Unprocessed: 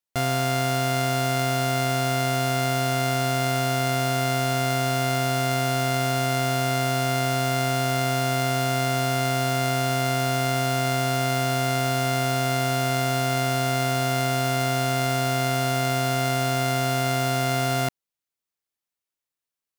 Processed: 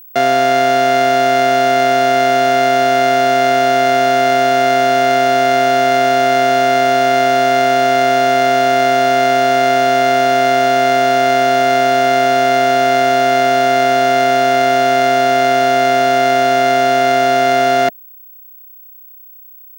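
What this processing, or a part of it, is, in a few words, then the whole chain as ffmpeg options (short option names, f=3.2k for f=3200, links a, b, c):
old television with a line whistle: -af "highpass=f=200:w=0.5412,highpass=f=200:w=1.3066,equalizer=f=430:t=q:w=4:g=8,equalizer=f=670:t=q:w=4:g=8,equalizer=f=1k:t=q:w=4:g=-5,equalizer=f=1.7k:t=q:w=4:g=8,equalizer=f=4.9k:t=q:w=4:g=-3,equalizer=f=7.8k:t=q:w=4:g=-9,lowpass=f=7.9k:w=0.5412,lowpass=f=7.9k:w=1.3066,aeval=exprs='val(0)+0.00631*sin(2*PI*15734*n/s)':c=same,volume=8dB"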